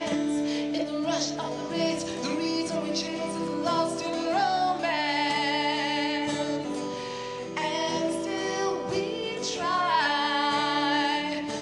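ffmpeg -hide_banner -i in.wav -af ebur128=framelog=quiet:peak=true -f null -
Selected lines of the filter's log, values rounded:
Integrated loudness:
  I:         -27.5 LUFS
  Threshold: -37.5 LUFS
Loudness range:
  LRA:         3.0 LU
  Threshold: -47.7 LUFS
  LRA low:   -29.3 LUFS
  LRA high:  -26.3 LUFS
True peak:
  Peak:      -12.5 dBFS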